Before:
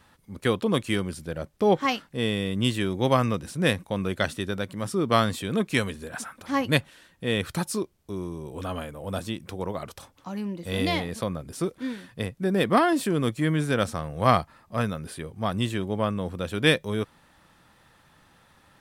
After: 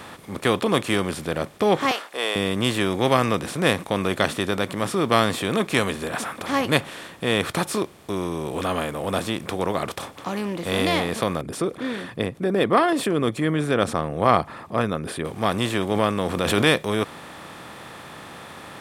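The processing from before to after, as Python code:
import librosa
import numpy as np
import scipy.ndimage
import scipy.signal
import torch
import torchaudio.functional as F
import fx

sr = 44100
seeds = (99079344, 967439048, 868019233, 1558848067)

y = fx.highpass(x, sr, hz=530.0, slope=24, at=(1.91, 2.36))
y = fx.envelope_sharpen(y, sr, power=1.5, at=(11.41, 15.25))
y = fx.pre_swell(y, sr, db_per_s=44.0, at=(15.91, 16.67))
y = fx.bin_compress(y, sr, power=0.6)
y = fx.low_shelf(y, sr, hz=85.0, db=-9.5)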